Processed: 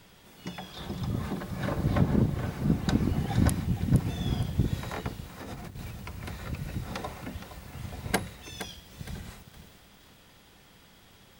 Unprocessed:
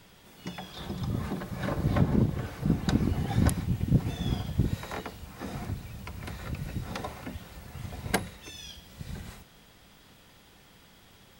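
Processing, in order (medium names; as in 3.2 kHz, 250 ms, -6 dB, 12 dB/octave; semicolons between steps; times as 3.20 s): 5.40–5.91 s: compressor with a negative ratio -41 dBFS, ratio -1; bit-crushed delay 466 ms, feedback 35%, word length 8-bit, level -11 dB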